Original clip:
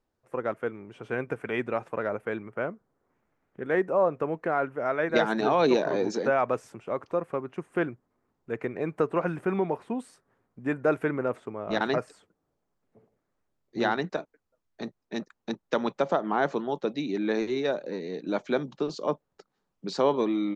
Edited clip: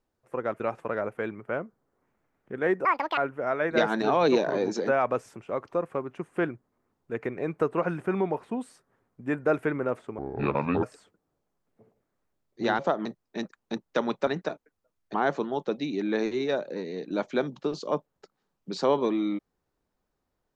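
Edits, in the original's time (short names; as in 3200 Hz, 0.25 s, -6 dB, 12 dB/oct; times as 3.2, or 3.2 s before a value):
0.6–1.68 cut
3.93–4.56 speed 194%
11.57–11.99 speed 65%
13.95–14.82 swap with 16.04–16.3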